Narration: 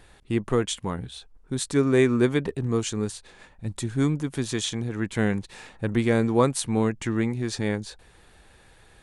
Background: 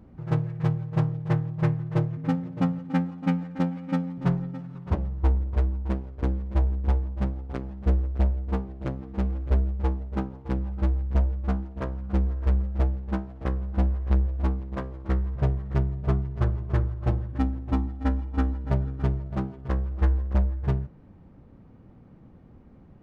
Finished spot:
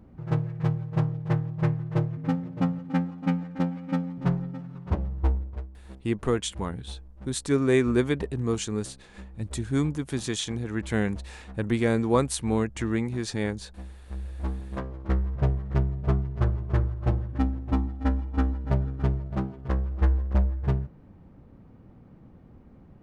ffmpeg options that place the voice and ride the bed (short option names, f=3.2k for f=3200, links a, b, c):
-filter_complex "[0:a]adelay=5750,volume=-2dB[a];[1:a]volume=17dB,afade=t=out:st=5.22:d=0.45:silence=0.141254,afade=t=in:st=14.09:d=0.81:silence=0.125893[b];[a][b]amix=inputs=2:normalize=0"